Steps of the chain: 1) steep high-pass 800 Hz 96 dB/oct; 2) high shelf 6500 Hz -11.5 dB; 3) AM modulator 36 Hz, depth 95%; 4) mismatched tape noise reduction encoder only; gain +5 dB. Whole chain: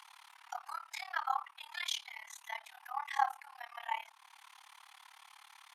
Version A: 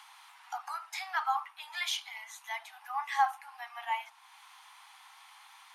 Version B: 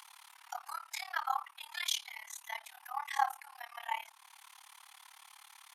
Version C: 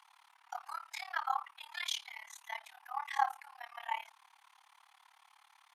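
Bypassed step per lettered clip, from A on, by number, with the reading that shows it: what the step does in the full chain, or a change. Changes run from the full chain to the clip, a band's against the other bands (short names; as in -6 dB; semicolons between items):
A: 3, momentary loudness spread change +2 LU; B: 2, 8 kHz band +5.0 dB; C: 4, momentary loudness spread change -8 LU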